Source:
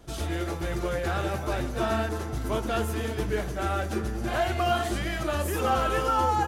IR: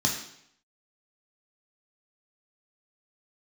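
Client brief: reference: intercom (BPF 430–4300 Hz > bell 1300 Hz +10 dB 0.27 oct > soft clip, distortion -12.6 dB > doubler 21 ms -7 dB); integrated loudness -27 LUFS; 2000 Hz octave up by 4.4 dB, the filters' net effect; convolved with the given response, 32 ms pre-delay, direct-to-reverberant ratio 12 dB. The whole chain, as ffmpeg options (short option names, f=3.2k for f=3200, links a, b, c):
-filter_complex "[0:a]equalizer=f=2k:t=o:g=3.5,asplit=2[a][b];[1:a]atrim=start_sample=2205,adelay=32[c];[b][c]afir=irnorm=-1:irlink=0,volume=-22dB[d];[a][d]amix=inputs=2:normalize=0,highpass=430,lowpass=4.3k,equalizer=f=1.3k:t=o:w=0.27:g=10,asoftclip=threshold=-18dB,asplit=2[e][f];[f]adelay=21,volume=-7dB[g];[e][g]amix=inputs=2:normalize=0"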